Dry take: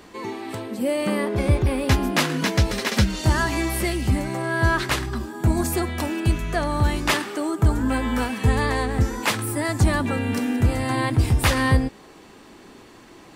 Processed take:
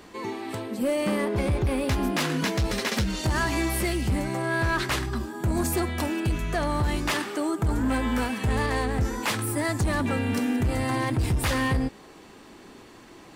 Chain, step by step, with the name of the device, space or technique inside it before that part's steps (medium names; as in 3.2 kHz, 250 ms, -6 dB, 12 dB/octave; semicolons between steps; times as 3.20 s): limiter into clipper (peak limiter -13 dBFS, peak gain reduction 5.5 dB; hard clipper -18 dBFS, distortion -16 dB); trim -1.5 dB